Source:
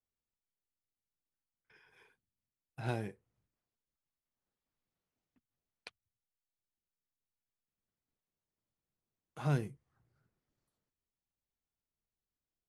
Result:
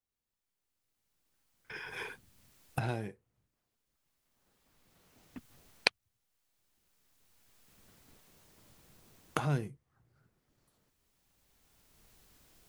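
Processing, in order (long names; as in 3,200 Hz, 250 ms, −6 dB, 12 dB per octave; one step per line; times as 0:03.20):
camcorder AGC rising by 12 dB per second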